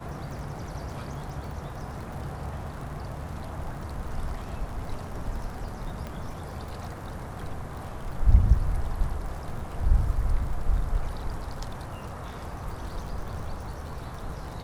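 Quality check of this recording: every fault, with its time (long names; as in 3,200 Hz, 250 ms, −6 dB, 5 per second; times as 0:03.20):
surface crackle 48 per second −37 dBFS
0:06.07: click −22 dBFS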